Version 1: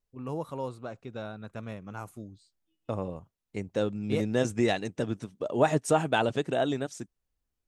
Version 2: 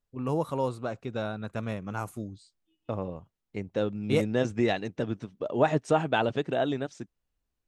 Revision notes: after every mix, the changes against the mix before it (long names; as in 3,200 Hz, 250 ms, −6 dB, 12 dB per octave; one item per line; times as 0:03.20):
first voice +6.0 dB
second voice: add low-pass filter 4,500 Hz 12 dB per octave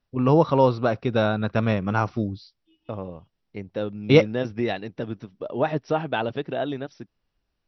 first voice +11.0 dB
master: add linear-phase brick-wall low-pass 5,900 Hz